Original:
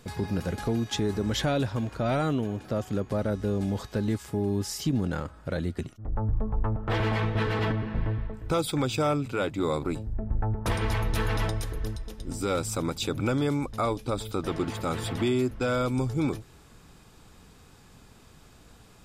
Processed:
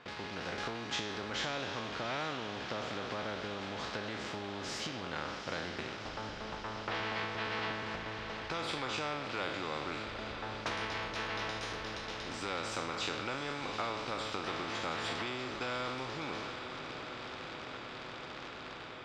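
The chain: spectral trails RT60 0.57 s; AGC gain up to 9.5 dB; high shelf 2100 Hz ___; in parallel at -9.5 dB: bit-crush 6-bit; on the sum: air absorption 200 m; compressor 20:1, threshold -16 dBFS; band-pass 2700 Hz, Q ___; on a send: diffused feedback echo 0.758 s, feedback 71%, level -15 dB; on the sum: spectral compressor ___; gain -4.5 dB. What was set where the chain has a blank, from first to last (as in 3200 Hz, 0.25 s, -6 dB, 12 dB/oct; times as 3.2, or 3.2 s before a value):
-11.5 dB, 0.55, 2:1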